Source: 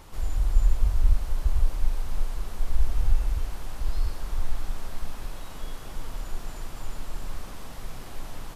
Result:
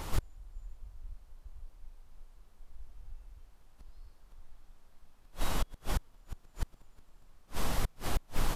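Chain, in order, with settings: flipped gate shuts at -24 dBFS, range -34 dB; wavefolder -27 dBFS; gain +8 dB

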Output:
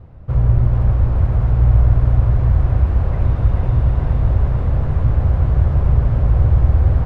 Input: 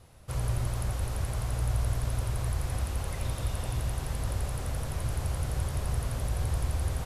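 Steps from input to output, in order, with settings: LPF 1600 Hz 12 dB/oct; low shelf 360 Hz +11.5 dB; on a send: thinning echo 0.437 s, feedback 70%, high-pass 420 Hz, level -3 dB; on the sum: gain +5.5 dB

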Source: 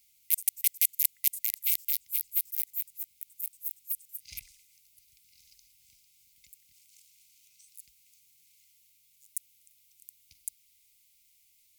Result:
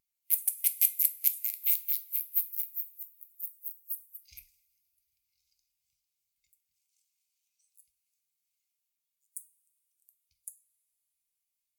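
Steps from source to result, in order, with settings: two-slope reverb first 0.43 s, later 4.2 s, from -18 dB, DRR 6 dB; spectral expander 1.5:1; gain -1 dB

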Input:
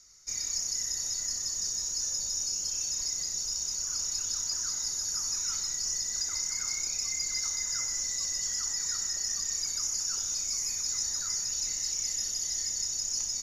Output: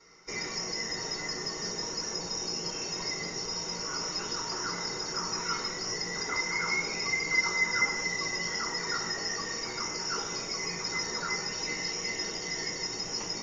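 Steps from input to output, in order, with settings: air absorption 160 m; reverb RT60 0.35 s, pre-delay 3 ms, DRR -5 dB; gain -1 dB

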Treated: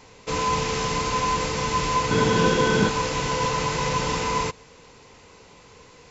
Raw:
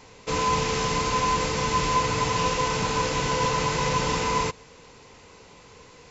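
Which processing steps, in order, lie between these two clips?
2.11–2.89 small resonant body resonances 220/360/1500/3300 Hz, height 13 dB, ringing for 30 ms

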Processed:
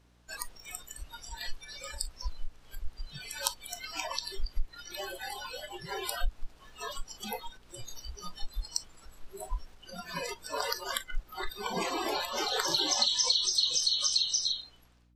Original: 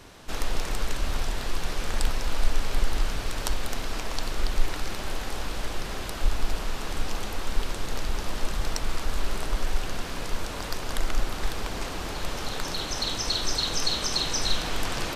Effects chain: ending faded out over 1.69 s; low shelf 120 Hz -6 dB; compressor 20:1, threshold -29 dBFS, peak gain reduction 12.5 dB; hum 60 Hz, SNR 11 dB; spectral noise reduction 28 dB; gain +8 dB

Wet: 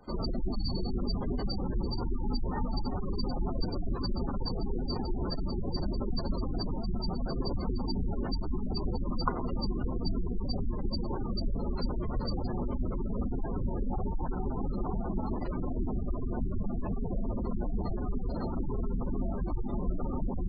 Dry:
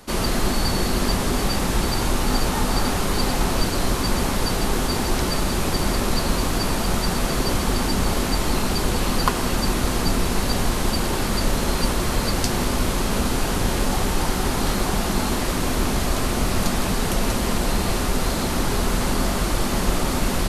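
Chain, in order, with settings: spectral gate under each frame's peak -15 dB strong; gain -8.5 dB

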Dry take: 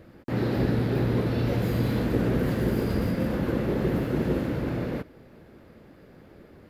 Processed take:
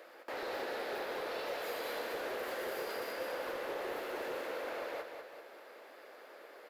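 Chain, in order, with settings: HPF 520 Hz 24 dB/oct; compressor 1.5:1, threshold -55 dBFS, peak gain reduction 9 dB; hard clip -39 dBFS, distortion -17 dB; on a send: feedback echo 0.196 s, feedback 47%, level -6.5 dB; on the sum: gain +4 dB

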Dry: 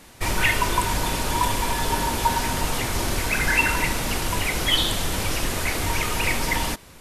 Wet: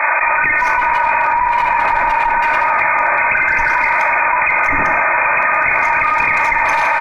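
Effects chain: HPF 770 Hz 24 dB/oct; comb 3.3 ms, depth 87%; AGC gain up to 14.5 dB; tube stage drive 9 dB, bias 0.45; brick-wall FIR low-pass 2600 Hz; speakerphone echo 0.17 s, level -12 dB; non-linear reverb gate 0.23 s falling, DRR 6.5 dB; fast leveller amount 100%; gain -1 dB

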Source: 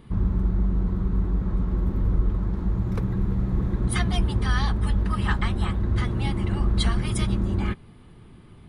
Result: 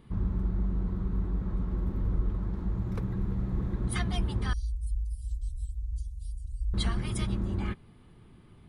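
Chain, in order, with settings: 4.53–6.74 inverse Chebyshev band-stop 200–2100 Hz, stop band 60 dB; gain -6.5 dB

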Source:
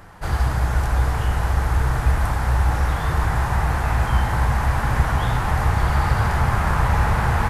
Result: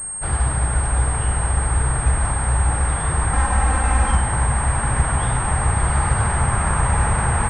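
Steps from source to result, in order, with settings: 3.33–4.15 comb 3.8 ms, depth 94%; pulse-width modulation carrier 8500 Hz

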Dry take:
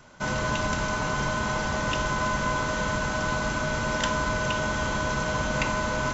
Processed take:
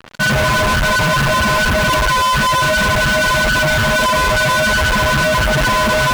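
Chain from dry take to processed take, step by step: spectral contrast raised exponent 3; fuzz box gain 47 dB, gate -47 dBFS

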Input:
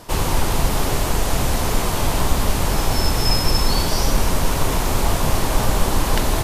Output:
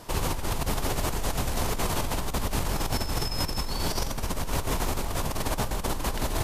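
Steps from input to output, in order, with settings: negative-ratio compressor -20 dBFS, ratio -1; gain -7.5 dB

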